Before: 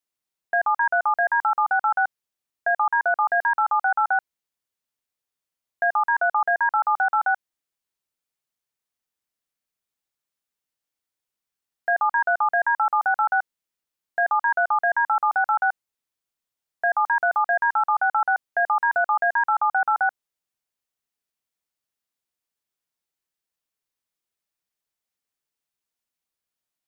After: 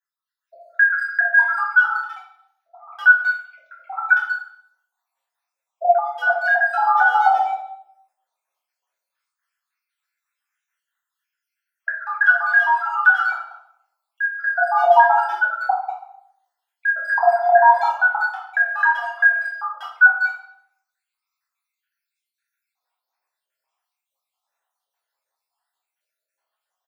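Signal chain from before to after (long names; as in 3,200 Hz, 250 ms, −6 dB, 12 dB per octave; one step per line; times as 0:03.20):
time-frequency cells dropped at random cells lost 72%
parametric band 1,100 Hz +6.5 dB 2.2 octaves
far-end echo of a speakerphone 190 ms, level −14 dB
automatic gain control gain up to 8 dB
brickwall limiter −12.5 dBFS, peak gain reduction 10.5 dB
0:01.82–0:02.98: volume swells 259 ms
auto-filter high-pass square 0.11 Hz 740–1,500 Hz
0:14.19–0:14.62: high-frequency loss of the air 290 metres
convolution reverb RT60 0.75 s, pre-delay 5 ms, DRR −6 dB
0:06.00–0:06.28: gain on a spectral selection 500–1,700 Hz −8 dB
level −9 dB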